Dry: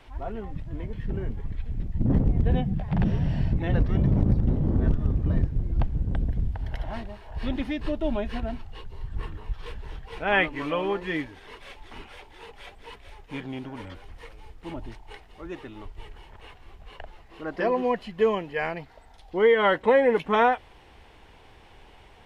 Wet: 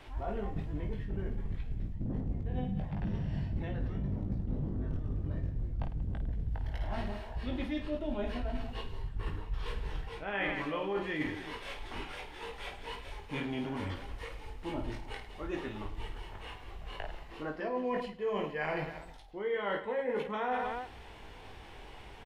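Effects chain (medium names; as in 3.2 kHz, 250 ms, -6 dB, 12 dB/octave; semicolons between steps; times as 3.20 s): reverse bouncing-ball echo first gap 20 ms, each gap 1.6×, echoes 5; reverse; compression 10:1, threshold -31 dBFS, peak gain reduction 19 dB; reverse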